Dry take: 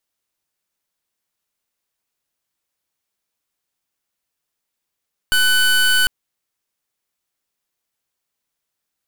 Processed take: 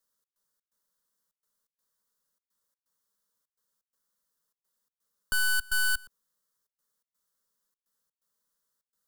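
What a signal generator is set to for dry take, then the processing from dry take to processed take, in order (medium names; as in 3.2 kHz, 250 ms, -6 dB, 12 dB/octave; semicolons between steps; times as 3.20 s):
pulse 1.5 kHz, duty 24% -14.5 dBFS 0.75 s
peak limiter -22.5 dBFS; trance gate "xx.xx.xxx" 126 bpm -24 dB; static phaser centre 490 Hz, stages 8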